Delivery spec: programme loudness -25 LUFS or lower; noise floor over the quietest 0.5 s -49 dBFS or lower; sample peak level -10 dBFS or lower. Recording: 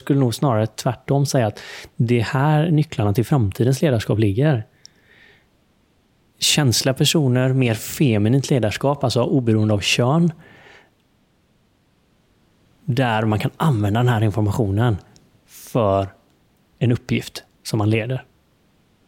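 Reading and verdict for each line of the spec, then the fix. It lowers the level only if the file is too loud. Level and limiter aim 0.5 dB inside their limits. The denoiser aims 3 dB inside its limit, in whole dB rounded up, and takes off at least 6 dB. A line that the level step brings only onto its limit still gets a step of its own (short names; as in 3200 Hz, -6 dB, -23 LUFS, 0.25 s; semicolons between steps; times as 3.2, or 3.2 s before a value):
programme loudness -19.0 LUFS: fail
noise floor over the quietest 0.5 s -61 dBFS: OK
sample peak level -5.5 dBFS: fail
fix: gain -6.5 dB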